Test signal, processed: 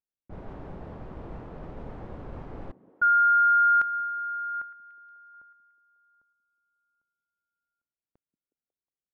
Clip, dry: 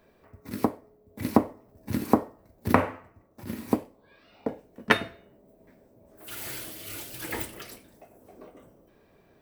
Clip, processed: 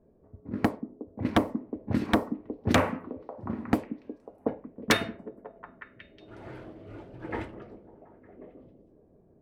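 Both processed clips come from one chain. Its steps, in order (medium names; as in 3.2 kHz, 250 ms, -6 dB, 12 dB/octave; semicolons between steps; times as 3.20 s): level-controlled noise filter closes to 430 Hz, open at -20.5 dBFS; repeats whose band climbs or falls 182 ms, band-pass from 220 Hz, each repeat 0.7 oct, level -12 dB; wavefolder -14 dBFS; trim +2 dB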